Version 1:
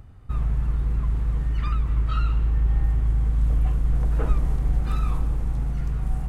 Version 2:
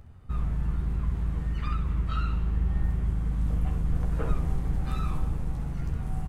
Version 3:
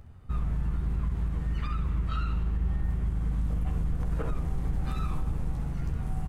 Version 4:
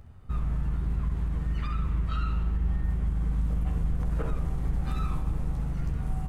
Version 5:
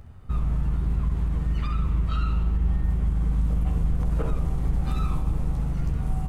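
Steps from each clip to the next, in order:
AM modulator 130 Hz, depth 25%; early reflections 13 ms -6.5 dB, 65 ms -9 dB; gain -2 dB
limiter -21 dBFS, peak gain reduction 8 dB
reverb RT60 0.75 s, pre-delay 15 ms, DRR 10 dB
dynamic EQ 1700 Hz, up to -5 dB, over -56 dBFS, Q 2.1; gain +4 dB

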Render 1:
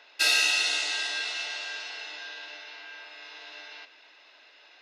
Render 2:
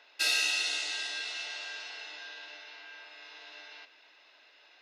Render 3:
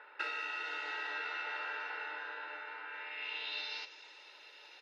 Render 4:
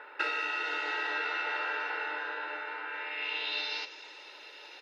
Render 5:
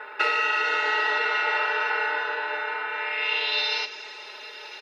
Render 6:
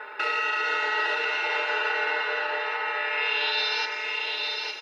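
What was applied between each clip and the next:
dynamic EQ 1000 Hz, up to -3 dB, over -37 dBFS, Q 0.7; gain -4.5 dB
comb 2.2 ms, depth 69%; compressor 6:1, threshold -33 dBFS, peak gain reduction 10.5 dB; low-pass sweep 1500 Hz -> 11000 Hz, 2.85–4.33; gain +2.5 dB
low shelf 420 Hz +7.5 dB; gain +6 dB
comb 4.7 ms, depth 99%; gain +5.5 dB
limiter -17 dBFS, peak gain reduction 7 dB; echo 0.859 s -3.5 dB

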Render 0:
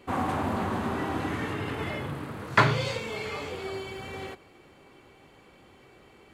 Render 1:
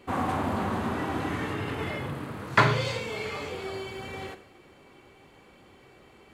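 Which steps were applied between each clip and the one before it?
Schroeder reverb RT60 0.56 s, combs from 30 ms, DRR 11 dB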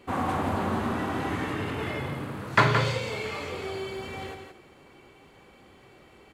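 echo 0.171 s -7 dB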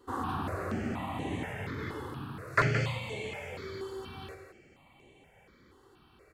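step phaser 4.2 Hz 640–5000 Hz; gain -3.5 dB

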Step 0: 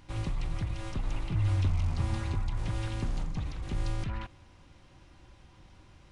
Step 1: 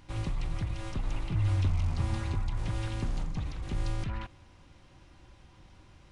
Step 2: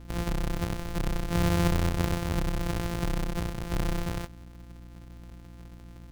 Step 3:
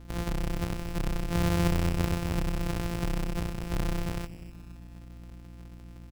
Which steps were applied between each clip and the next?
nothing audible
sample sorter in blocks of 256 samples; hum 60 Hz, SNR 17 dB; gain +2 dB
feedback echo 0.25 s, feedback 46%, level -16.5 dB; gain -1.5 dB

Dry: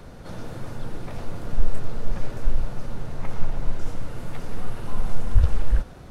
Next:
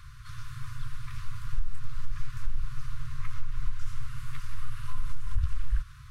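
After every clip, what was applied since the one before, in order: FFT band-reject 140–1000 Hz; compressor 6:1, threshold -16 dBFS, peak gain reduction 9.5 dB; gain -2.5 dB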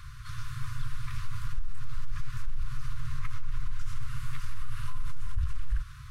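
limiter -23 dBFS, peak gain reduction 9.5 dB; gain +3 dB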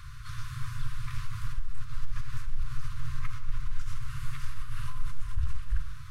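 reverb RT60 0.70 s, pre-delay 39 ms, DRR 11 dB

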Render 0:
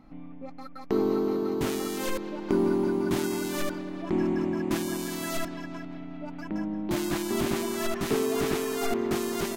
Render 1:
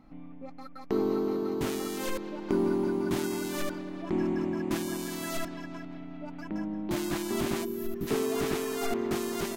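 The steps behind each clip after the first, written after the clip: spectral gain 7.64–8.07, 510–11000 Hz -15 dB; gain -2.5 dB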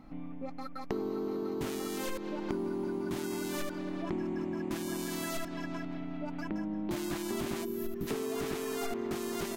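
compressor 5:1, threshold -36 dBFS, peak gain reduction 12 dB; gain +3.5 dB

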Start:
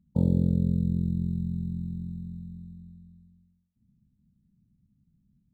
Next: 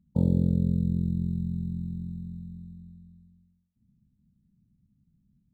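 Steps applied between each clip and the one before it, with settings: nothing audible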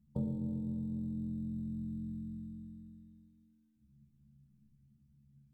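compressor, threshold -31 dBFS, peak gain reduction 13 dB; metallic resonator 69 Hz, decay 0.36 s, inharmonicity 0.008; spring tank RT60 3 s, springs 36 ms, chirp 55 ms, DRR 3.5 dB; gain +7.5 dB

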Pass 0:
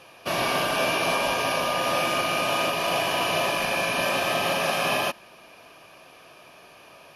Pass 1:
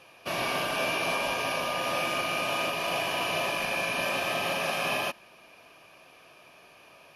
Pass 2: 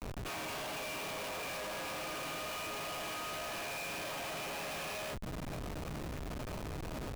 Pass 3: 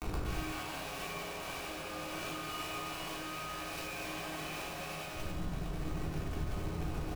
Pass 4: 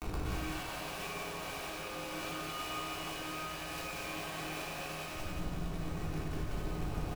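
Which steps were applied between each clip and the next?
bell 2400 Hz +3 dB 0.48 oct; gain -5.5 dB
compressor 20:1, threshold -36 dBFS, peak gain reduction 12 dB; resonator bank G#2 sus4, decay 0.22 s; Schmitt trigger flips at -59.5 dBFS; gain +12.5 dB
on a send: loudspeakers at several distances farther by 33 m -2 dB, 72 m -5 dB; on the sum: negative-ratio compressor -45 dBFS, ratio -1; shoebox room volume 610 m³, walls furnished, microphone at 3.5 m; gain -1 dB
echo 0.179 s -4.5 dB; gain -1 dB

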